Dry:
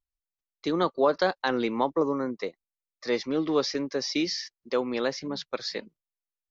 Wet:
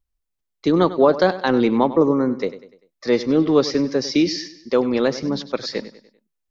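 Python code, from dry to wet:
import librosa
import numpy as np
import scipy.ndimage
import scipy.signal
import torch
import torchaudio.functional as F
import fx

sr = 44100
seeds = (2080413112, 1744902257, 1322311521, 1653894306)

y = fx.low_shelf(x, sr, hz=430.0, db=10.0)
y = fx.echo_feedback(y, sr, ms=98, feedback_pct=44, wet_db=-15.0)
y = y * librosa.db_to_amplitude(4.0)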